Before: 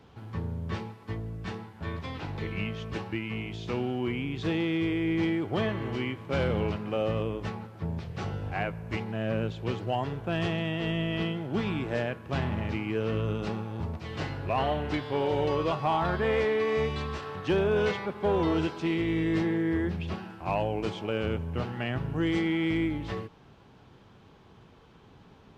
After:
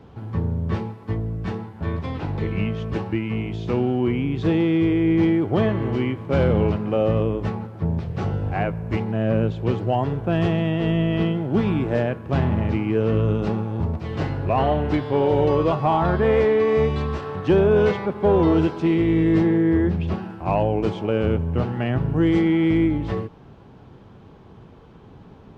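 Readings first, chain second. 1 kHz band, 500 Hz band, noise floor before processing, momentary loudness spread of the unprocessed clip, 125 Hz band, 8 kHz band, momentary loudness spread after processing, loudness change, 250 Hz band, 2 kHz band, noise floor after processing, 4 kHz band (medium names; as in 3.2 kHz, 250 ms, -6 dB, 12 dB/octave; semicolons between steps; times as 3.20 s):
+6.5 dB, +8.5 dB, -55 dBFS, 9 LU, +10.0 dB, no reading, 9 LU, +8.5 dB, +9.5 dB, +2.5 dB, -46 dBFS, +0.5 dB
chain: tilt shelf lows +5.5 dB, about 1.3 kHz; trim +4.5 dB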